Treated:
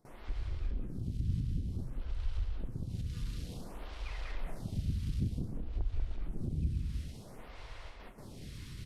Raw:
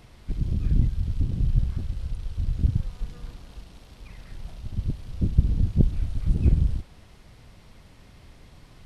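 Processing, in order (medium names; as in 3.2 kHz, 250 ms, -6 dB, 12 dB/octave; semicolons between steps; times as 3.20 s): gate with hold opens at -40 dBFS; compression 6:1, threshold -32 dBFS, peak gain reduction 19 dB; saturation -29 dBFS, distortion -16 dB; bouncing-ball echo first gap 190 ms, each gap 0.6×, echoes 5; lamp-driven phase shifter 0.55 Hz; trim +5 dB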